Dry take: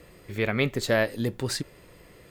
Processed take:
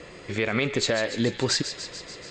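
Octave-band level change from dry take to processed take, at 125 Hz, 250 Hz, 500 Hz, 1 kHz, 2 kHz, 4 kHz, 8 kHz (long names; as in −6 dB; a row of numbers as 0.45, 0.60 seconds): −1.0, +2.0, 0.0, +0.5, +1.0, +7.0, +6.0 decibels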